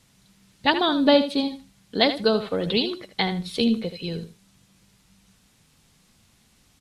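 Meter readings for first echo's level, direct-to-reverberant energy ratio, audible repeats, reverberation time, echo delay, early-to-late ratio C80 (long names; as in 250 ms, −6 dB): −11.0 dB, no reverb audible, 2, no reverb audible, 78 ms, no reverb audible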